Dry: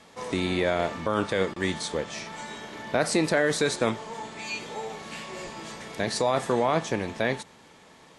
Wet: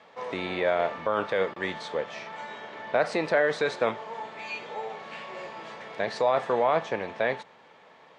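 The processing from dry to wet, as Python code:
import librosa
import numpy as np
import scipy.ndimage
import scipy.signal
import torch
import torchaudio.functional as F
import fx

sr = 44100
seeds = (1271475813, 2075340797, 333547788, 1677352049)

y = fx.bandpass_edges(x, sr, low_hz=120.0, high_hz=2900.0)
y = fx.low_shelf_res(y, sr, hz=400.0, db=-6.5, q=1.5)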